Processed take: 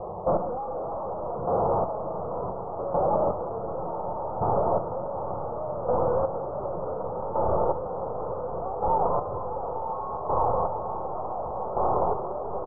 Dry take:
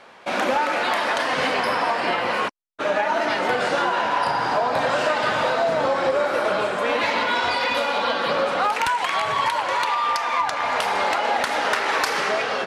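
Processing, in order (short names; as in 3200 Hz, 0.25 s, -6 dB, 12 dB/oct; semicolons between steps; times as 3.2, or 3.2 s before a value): rattling part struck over -42 dBFS, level -22 dBFS; low shelf 110 Hz +12 dB; pitch shift -1.5 st; low shelf 450 Hz +11.5 dB; fixed phaser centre 620 Hz, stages 4; soft clip -29.5 dBFS, distortion -5 dB; diffused feedback echo 1.026 s, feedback 67%, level -3.5 dB; vocal rider 0.5 s; chopper 0.68 Hz, depth 60%, duty 25%; steep low-pass 1300 Hz 96 dB/oct; on a send at -14 dB: reverb RT60 0.45 s, pre-delay 6 ms; on the sum: gain +5.5 dB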